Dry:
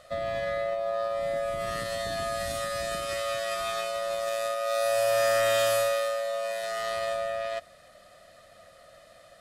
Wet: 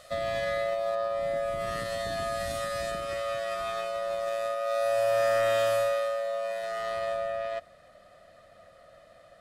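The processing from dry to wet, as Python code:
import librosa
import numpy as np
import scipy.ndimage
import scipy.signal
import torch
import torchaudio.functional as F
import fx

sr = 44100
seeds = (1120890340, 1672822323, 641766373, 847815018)

y = fx.high_shelf(x, sr, hz=3000.0, db=fx.steps((0.0, 6.5), (0.94, -4.0), (2.9, -10.5)))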